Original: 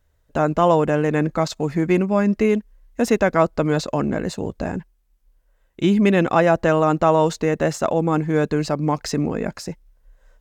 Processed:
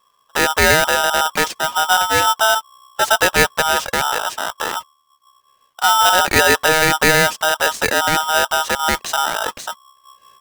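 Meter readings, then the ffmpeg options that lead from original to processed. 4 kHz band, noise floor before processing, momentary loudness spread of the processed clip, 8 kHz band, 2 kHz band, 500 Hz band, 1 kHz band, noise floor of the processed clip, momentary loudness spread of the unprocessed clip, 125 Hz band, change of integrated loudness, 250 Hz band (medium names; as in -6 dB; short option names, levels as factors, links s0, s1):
+17.5 dB, -63 dBFS, 11 LU, +16.0 dB, +13.5 dB, -1.5 dB, +7.5 dB, -61 dBFS, 11 LU, -7.5 dB, +4.5 dB, -9.5 dB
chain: -af "aeval=exprs='val(0)*sgn(sin(2*PI*1100*n/s))':c=same,volume=1.33"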